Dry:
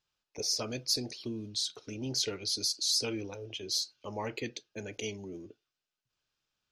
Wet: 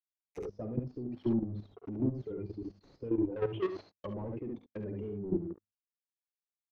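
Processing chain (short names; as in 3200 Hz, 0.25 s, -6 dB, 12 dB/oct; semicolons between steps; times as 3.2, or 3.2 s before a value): per-bin expansion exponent 2; compressor 12:1, threshold -42 dBFS, peak gain reduction 15.5 dB; steep low-pass 7500 Hz 72 dB/oct; notches 50/100/150/200/250 Hz; sample leveller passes 5; treble ducked by the level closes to 400 Hz, closed at -35.5 dBFS; dynamic EQ 340 Hz, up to +4 dB, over -54 dBFS, Q 2.8; 3.36–3.91 overdrive pedal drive 23 dB, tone 3300 Hz, clips at -28.5 dBFS; early reflections 49 ms -10 dB, 70 ms -4.5 dB; level quantiser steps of 11 dB; gain +5.5 dB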